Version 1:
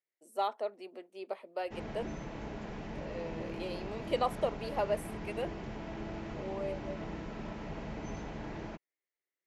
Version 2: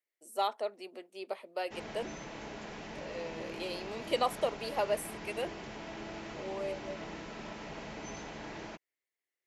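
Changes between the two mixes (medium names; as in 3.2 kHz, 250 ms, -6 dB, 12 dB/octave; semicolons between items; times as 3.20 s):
background: add bass shelf 180 Hz -11 dB; master: add treble shelf 2.6 kHz +9 dB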